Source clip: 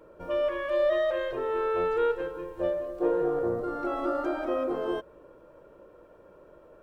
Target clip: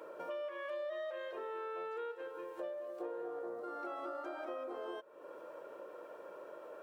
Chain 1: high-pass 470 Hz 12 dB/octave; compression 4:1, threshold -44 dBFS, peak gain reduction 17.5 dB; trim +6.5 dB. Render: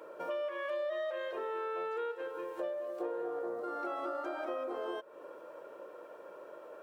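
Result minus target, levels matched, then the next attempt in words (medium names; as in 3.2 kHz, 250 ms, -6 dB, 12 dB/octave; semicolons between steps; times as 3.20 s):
compression: peak gain reduction -5 dB
high-pass 470 Hz 12 dB/octave; compression 4:1, threshold -50.5 dBFS, peak gain reduction 22.5 dB; trim +6.5 dB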